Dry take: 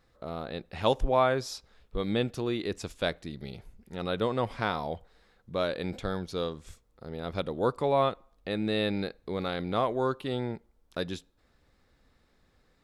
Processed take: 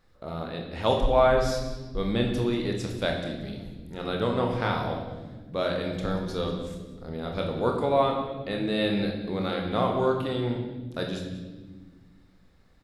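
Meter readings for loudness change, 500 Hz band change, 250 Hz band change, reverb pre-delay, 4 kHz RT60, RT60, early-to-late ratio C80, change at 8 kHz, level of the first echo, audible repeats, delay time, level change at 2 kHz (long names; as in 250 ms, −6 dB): +3.5 dB, +3.5 dB, +4.5 dB, 25 ms, 1.1 s, 1.3 s, 6.5 dB, can't be measured, −15.0 dB, 1, 187 ms, +2.5 dB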